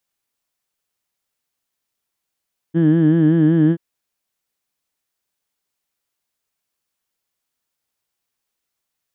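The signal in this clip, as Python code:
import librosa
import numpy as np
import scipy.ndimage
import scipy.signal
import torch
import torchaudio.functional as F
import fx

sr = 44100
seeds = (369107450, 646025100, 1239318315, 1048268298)

y = fx.formant_vowel(sr, seeds[0], length_s=1.03, hz=160.0, glide_st=0.0, vibrato_hz=5.3, vibrato_st=0.9, f1_hz=290.0, f2_hz=1700.0, f3_hz=3100.0)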